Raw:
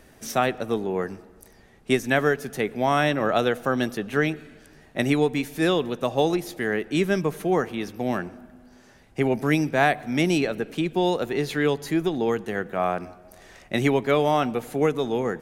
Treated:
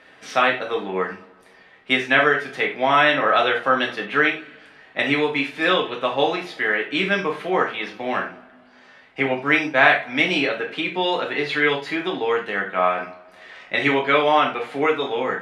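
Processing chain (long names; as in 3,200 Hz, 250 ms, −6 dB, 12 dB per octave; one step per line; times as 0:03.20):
meter weighting curve ITU-R 468
0:09.26–0:09.91: downward expander −29 dBFS
high-frequency loss of the air 470 metres
reverb whose tail is shaped and stops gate 120 ms falling, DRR −1 dB
level +5.5 dB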